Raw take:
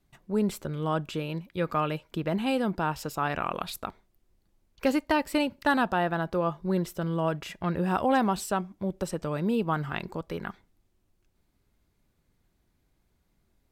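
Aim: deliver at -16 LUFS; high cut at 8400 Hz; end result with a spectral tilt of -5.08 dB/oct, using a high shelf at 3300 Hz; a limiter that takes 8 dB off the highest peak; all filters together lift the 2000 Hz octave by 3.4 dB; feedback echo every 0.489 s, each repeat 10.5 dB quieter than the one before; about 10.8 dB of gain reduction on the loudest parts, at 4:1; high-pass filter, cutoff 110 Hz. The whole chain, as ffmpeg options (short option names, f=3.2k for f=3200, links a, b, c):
-af "highpass=110,lowpass=8.4k,equalizer=f=2k:t=o:g=6,highshelf=f=3.3k:g=-5,acompressor=threshold=-32dB:ratio=4,alimiter=level_in=2dB:limit=-24dB:level=0:latency=1,volume=-2dB,aecho=1:1:489|978|1467:0.299|0.0896|0.0269,volume=21.5dB"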